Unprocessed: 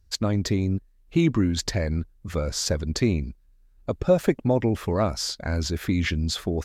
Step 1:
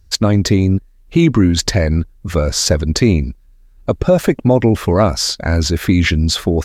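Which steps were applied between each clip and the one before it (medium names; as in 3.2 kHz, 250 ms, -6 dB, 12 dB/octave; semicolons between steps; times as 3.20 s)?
loudness maximiser +12 dB; trim -1 dB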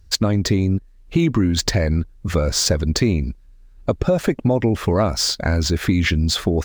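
median filter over 3 samples; compression 2.5:1, threshold -16 dBFS, peak gain reduction 7 dB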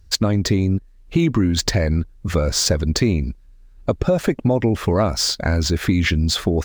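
no audible change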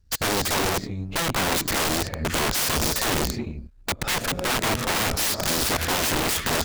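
gated-style reverb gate 400 ms rising, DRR 10.5 dB; integer overflow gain 17.5 dB; power-law waveshaper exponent 1.4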